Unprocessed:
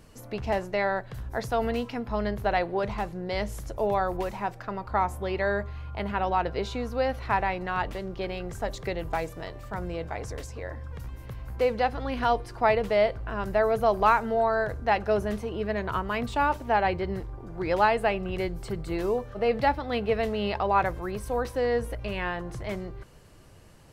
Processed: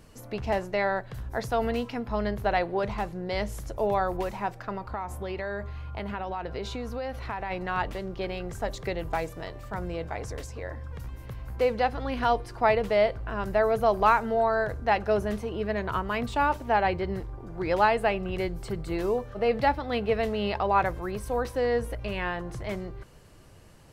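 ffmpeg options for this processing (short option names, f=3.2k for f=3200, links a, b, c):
-filter_complex "[0:a]asplit=3[a][b][c];[a]afade=t=out:st=4.77:d=0.02[d];[b]acompressor=threshold=-29dB:ratio=6:attack=3.2:release=140:knee=1:detection=peak,afade=t=in:st=4.77:d=0.02,afade=t=out:st=7.5:d=0.02[e];[c]afade=t=in:st=7.5:d=0.02[f];[d][e][f]amix=inputs=3:normalize=0"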